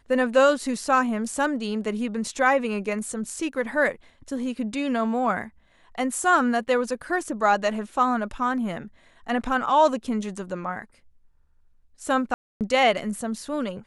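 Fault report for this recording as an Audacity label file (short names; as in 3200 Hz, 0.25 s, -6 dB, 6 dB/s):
12.340000	12.610000	gap 0.268 s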